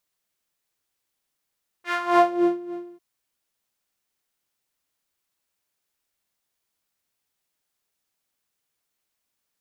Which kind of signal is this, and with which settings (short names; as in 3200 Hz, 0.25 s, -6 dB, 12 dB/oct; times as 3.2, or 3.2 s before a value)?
synth patch with tremolo F4, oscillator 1 saw, oscillator 2 saw, detune 19 cents, sub -28 dB, noise -14.5 dB, filter bandpass, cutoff 250 Hz, Q 1.9, filter envelope 3 oct, filter decay 0.64 s, filter sustain 15%, attack 0.233 s, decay 0.59 s, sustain -20.5 dB, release 0.11 s, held 1.04 s, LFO 3.6 Hz, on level 16 dB